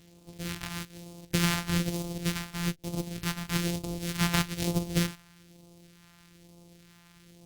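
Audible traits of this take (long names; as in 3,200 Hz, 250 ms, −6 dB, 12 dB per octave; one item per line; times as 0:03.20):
a buzz of ramps at a fixed pitch in blocks of 256 samples
phaser sweep stages 2, 1.1 Hz, lowest notch 420–1,600 Hz
Opus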